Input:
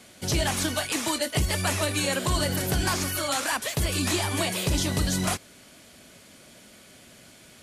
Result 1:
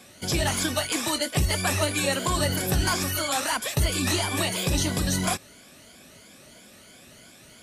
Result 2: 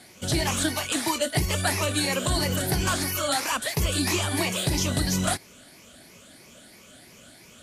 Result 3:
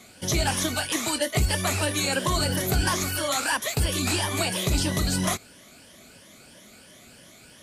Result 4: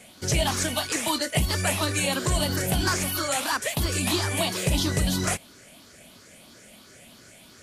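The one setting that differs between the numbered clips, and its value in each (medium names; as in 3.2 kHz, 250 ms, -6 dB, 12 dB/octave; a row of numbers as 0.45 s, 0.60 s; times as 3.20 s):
drifting ripple filter, ripples per octave: 1.8, 0.8, 1.2, 0.51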